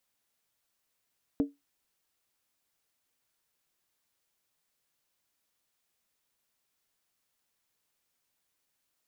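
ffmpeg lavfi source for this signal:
ffmpeg -f lavfi -i "aevalsrc='0.106*pow(10,-3*t/0.19)*sin(2*PI*283*t)+0.0335*pow(10,-3*t/0.15)*sin(2*PI*451.1*t)+0.0106*pow(10,-3*t/0.13)*sin(2*PI*604.5*t)+0.00335*pow(10,-3*t/0.125)*sin(2*PI*649.8*t)+0.00106*pow(10,-3*t/0.117)*sin(2*PI*750.8*t)':duration=0.63:sample_rate=44100" out.wav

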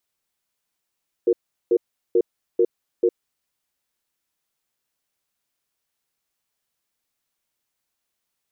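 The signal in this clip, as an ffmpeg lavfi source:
ffmpeg -f lavfi -i "aevalsrc='0.15*(sin(2*PI*361*t)+sin(2*PI*465*t))*clip(min(mod(t,0.44),0.06-mod(t,0.44))/0.005,0,1)':duration=2.01:sample_rate=44100" out.wav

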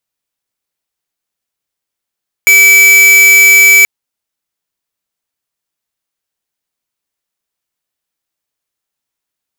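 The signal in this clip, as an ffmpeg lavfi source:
ffmpeg -f lavfi -i "aevalsrc='0.596*(2*lt(mod(2300*t,1),0.5)-1)':duration=1.38:sample_rate=44100" out.wav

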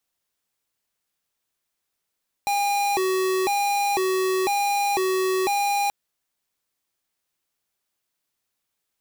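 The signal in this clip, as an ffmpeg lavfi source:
ffmpeg -f lavfi -i "aevalsrc='0.075*(2*lt(mod((592*t+217/1*(0.5-abs(mod(1*t,1)-0.5))),1),0.5)-1)':duration=3.43:sample_rate=44100" out.wav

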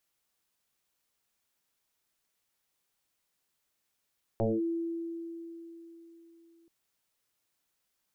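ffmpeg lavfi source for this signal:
ffmpeg -f lavfi -i "aevalsrc='0.0631*pow(10,-3*t/3.78)*sin(2*PI*334*t+3.3*clip(1-t/0.21,0,1)*sin(2*PI*0.34*334*t))':duration=2.28:sample_rate=44100" out.wav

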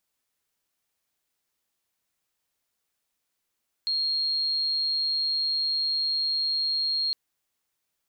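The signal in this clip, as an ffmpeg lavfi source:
ffmpeg -f lavfi -i "sine=frequency=4250:duration=3.26:sample_rate=44100,volume=-5.44dB" out.wav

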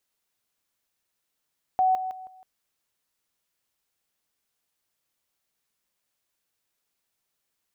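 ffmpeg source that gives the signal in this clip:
ffmpeg -f lavfi -i "aevalsrc='pow(10,(-18-10*floor(t/0.16))/20)*sin(2*PI*749*t)':duration=0.64:sample_rate=44100" out.wav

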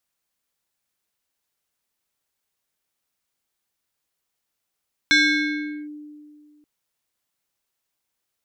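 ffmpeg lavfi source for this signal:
ffmpeg -f lavfi -i "aevalsrc='0.266*pow(10,-3*t/2.16)*sin(2*PI*298*t+2*clip(1-t/0.77,0,1)*sin(2*PI*6.37*298*t))':duration=1.53:sample_rate=44100" out.wav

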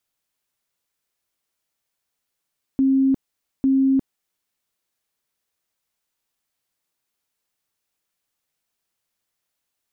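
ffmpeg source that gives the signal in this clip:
ffmpeg -f lavfi -i "aevalsrc='0.2*sin(2*PI*268*mod(t,0.85))*lt(mod(t,0.85),95/268)':duration=1.7:sample_rate=44100" out.wav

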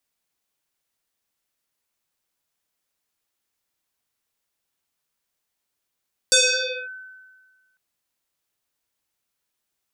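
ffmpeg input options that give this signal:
ffmpeg -f lavfi -i "aevalsrc='0.282*pow(10,-3*t/1.56)*sin(2*PI*1520*t+7.2*clip(1-t/0.56,0,1)*sin(2*PI*0.67*1520*t))':duration=1.45:sample_rate=44100" out.wav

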